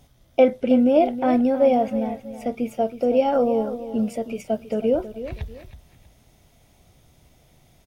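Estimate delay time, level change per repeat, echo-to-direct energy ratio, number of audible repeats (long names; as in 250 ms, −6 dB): 321 ms, −10.0 dB, −12.0 dB, 2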